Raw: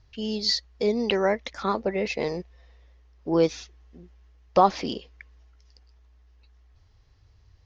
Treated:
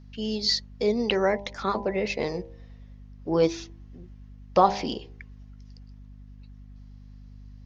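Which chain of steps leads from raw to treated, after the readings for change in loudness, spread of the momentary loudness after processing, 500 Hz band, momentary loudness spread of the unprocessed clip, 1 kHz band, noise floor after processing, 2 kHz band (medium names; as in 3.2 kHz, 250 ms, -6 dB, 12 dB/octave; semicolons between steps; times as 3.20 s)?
-0.5 dB, 16 LU, -0.5 dB, 13 LU, -0.5 dB, -47 dBFS, 0.0 dB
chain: de-hum 66.68 Hz, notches 15; hum 50 Hz, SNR 17 dB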